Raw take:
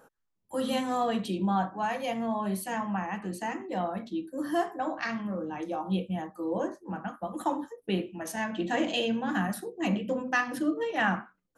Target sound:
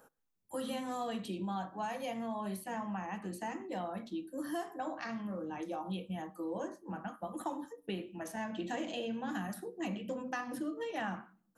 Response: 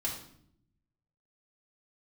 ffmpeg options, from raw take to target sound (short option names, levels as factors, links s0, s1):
-filter_complex "[0:a]highshelf=f=8300:g=7.5,acrossover=split=1200|2600[s0][s1][s2];[s0]acompressor=threshold=0.0282:ratio=4[s3];[s1]acompressor=threshold=0.00501:ratio=4[s4];[s2]acompressor=threshold=0.00501:ratio=4[s5];[s3][s4][s5]amix=inputs=3:normalize=0,asplit=2[s6][s7];[1:a]atrim=start_sample=2205[s8];[s7][s8]afir=irnorm=-1:irlink=0,volume=0.0631[s9];[s6][s9]amix=inputs=2:normalize=0,volume=0.562"